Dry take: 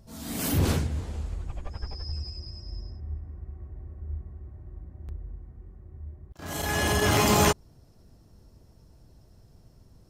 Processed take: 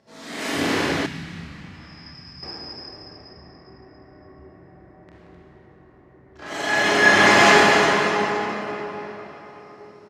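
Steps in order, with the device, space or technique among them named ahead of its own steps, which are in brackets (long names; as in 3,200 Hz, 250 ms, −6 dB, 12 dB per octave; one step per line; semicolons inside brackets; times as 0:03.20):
station announcement (band-pass filter 330–4,800 Hz; parametric band 1,900 Hz +6.5 dB 0.58 octaves; loudspeakers that aren't time-aligned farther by 10 metres −5 dB, 61 metres −11 dB, 88 metres −9 dB; convolution reverb RT60 4.1 s, pre-delay 38 ms, DRR −6 dB)
0:01.06–0:02.43: drawn EQ curve 170 Hz 0 dB, 450 Hz −22 dB, 2,000 Hz −7 dB
level +2.5 dB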